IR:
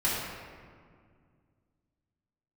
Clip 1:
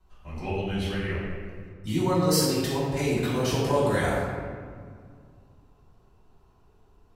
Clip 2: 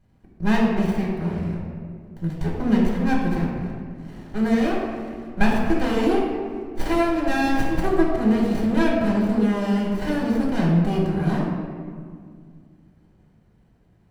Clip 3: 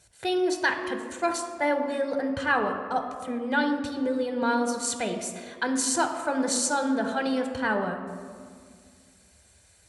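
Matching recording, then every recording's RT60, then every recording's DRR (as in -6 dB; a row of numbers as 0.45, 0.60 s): 1; 2.0, 2.0, 2.0 s; -9.0, -3.5, 5.0 dB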